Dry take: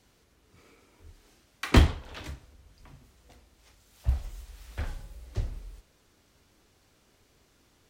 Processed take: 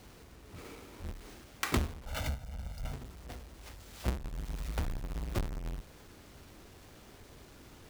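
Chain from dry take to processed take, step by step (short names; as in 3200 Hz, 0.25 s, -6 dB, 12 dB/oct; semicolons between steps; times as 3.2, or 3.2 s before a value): half-waves squared off; 2.06–2.93 comb 1.4 ms, depth 94%; compressor 4:1, threshold -39 dBFS, peak gain reduction 25.5 dB; gain +5.5 dB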